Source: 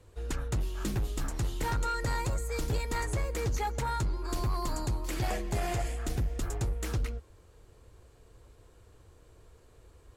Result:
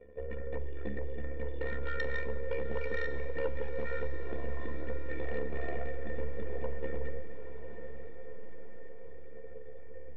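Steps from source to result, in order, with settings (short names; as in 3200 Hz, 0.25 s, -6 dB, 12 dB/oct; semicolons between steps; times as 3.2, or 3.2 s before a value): dynamic EQ 620 Hz, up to -8 dB, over -54 dBFS, Q 3.1; in parallel at +3 dB: compressor, threshold -42 dBFS, peak gain reduction 13.5 dB; on the sum: half-wave rectifier; metallic resonator 210 Hz, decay 0.23 s, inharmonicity 0.03; small resonant body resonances 320/3300 Hz, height 16 dB, ringing for 45 ms; AM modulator 70 Hz, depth 80%; vocal tract filter e; sine folder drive 4 dB, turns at -44.5 dBFS; on a send: diffused feedback echo 0.967 s, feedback 55%, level -10 dB; on the sum: Schroeder reverb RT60 1.1 s, combs from 32 ms, DRR 14.5 dB; gain +17 dB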